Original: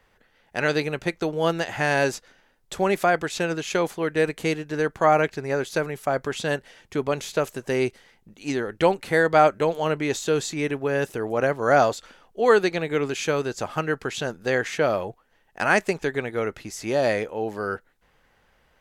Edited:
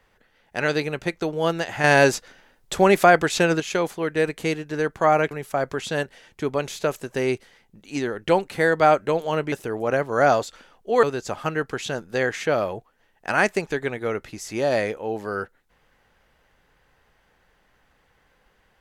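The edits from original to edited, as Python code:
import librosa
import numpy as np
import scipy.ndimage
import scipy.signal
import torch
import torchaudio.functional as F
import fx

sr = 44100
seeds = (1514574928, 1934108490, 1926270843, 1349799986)

y = fx.edit(x, sr, fx.clip_gain(start_s=1.84, length_s=1.76, db=6.0),
    fx.cut(start_s=5.31, length_s=0.53),
    fx.cut(start_s=10.05, length_s=0.97),
    fx.cut(start_s=12.53, length_s=0.82), tone=tone)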